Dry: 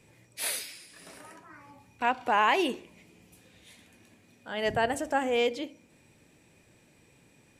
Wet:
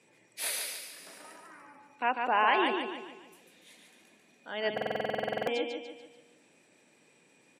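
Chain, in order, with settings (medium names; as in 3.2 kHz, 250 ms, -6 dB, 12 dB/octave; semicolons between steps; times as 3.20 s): spectral gate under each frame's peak -30 dB strong; Bessel high-pass 260 Hz, order 4; on a send: feedback delay 145 ms, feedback 45%, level -4.5 dB; on the sum: buffer glitch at 4.73 s, samples 2048, times 15; trim -2 dB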